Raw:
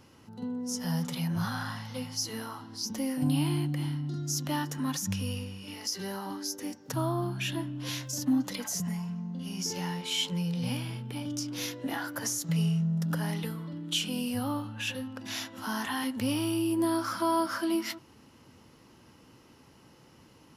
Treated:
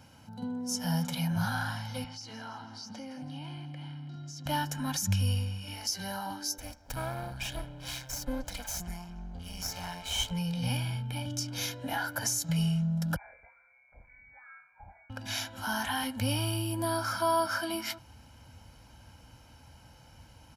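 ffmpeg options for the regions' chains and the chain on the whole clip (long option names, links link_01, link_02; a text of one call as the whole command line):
ffmpeg -i in.wav -filter_complex "[0:a]asettb=1/sr,asplit=3[link_01][link_02][link_03];[link_01]atrim=end=2.044[link_04];[link_02]atrim=start=2.04:end=4.46,asetpts=PTS-STARTPTS,afade=type=in:duration=0.004:curve=qsin,afade=type=out:start_time=2.416:duration=0.004:curve=qsin,acompressor=threshold=-39dB:ratio=3:attack=3.2:release=140:knee=1:detection=peak,highpass=140,lowpass=4500,aecho=1:1:165|330|495|660|825|990:0.224|0.121|0.0653|0.0353|0.019|0.0103,atrim=end_sample=106722[link_05];[link_03]atrim=start=4.456[link_06];[link_04][link_05]acrossfade=duration=0.004:curve1=hsin:curve2=qsin[link_07];[link_07][link_06]acrossfade=duration=0.004:curve1=qsin:curve2=hsin,asettb=1/sr,asplit=3[link_08][link_09][link_10];[link_08]atrim=end=6.584[link_11];[link_09]atrim=start=6.58:end=10.31,asetpts=PTS-STARTPTS,afade=type=in:duration=0.004:curve=qsin,afade=type=out:start_time=3.726:duration=0.004:curve=qsin,highpass=frequency=180:poles=1,aeval=exprs='max(val(0),0)':channel_layout=same[link_12];[link_10]atrim=start=10.306[link_13];[link_11][link_12]acrossfade=duration=0.004:curve1=hsin:curve2=qsin[link_14];[link_14][link_13]acrossfade=duration=0.004:curve1=qsin:curve2=hsin,asettb=1/sr,asplit=3[link_15][link_16][link_17];[link_15]atrim=end=13.164[link_18];[link_16]atrim=start=13.16:end=15.1,asetpts=PTS-STARTPTS,afade=type=in:duration=0.004:curve=qsin,afade=type=out:start_time=1.936:duration=0.004:curve=qsin,aderivative,lowpass=frequency=2100:width_type=q:width=0.5098,lowpass=frequency=2100:width_type=q:width=0.6013,lowpass=frequency=2100:width_type=q:width=0.9,lowpass=frequency=2100:width_type=q:width=2.563,afreqshift=-2500[link_19];[link_17]atrim=start=15.096[link_20];[link_18][link_19]acrossfade=duration=0.004:curve1=hsin:curve2=qsin[link_21];[link_21][link_20]acrossfade=duration=0.004:curve1=qsin:curve2=hsin,highpass=45,aecho=1:1:1.3:0.75,asubboost=boost=8:cutoff=59" out.wav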